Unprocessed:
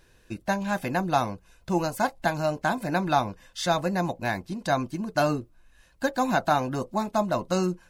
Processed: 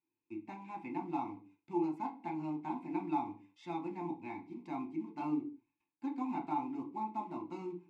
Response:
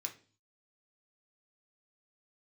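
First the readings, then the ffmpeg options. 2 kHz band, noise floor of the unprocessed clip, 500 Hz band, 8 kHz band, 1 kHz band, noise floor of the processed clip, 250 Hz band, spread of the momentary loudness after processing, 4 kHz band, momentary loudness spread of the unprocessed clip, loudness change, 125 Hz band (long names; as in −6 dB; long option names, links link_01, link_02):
−24.0 dB, −60 dBFS, −18.0 dB, below −30 dB, −12.5 dB, below −85 dBFS, −8.5 dB, 10 LU, below −25 dB, 6 LU, −12.5 dB, −19.5 dB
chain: -filter_complex "[0:a]highshelf=frequency=2600:gain=-9.5,agate=range=-15dB:threshold=-54dB:ratio=16:detection=peak,asplit=2[link_01][link_02];[link_02]acrusher=bits=3:mode=log:mix=0:aa=0.000001,volume=-10dB[link_03];[link_01][link_03]amix=inputs=2:normalize=0,asplit=3[link_04][link_05][link_06];[link_04]bandpass=frequency=300:width_type=q:width=8,volume=0dB[link_07];[link_05]bandpass=frequency=870:width_type=q:width=8,volume=-6dB[link_08];[link_06]bandpass=frequency=2240:width_type=q:width=8,volume=-9dB[link_09];[link_07][link_08][link_09]amix=inputs=3:normalize=0[link_10];[1:a]atrim=start_sample=2205,afade=type=out:start_time=0.28:duration=0.01,atrim=end_sample=12789[link_11];[link_10][link_11]afir=irnorm=-1:irlink=0,volume=1dB"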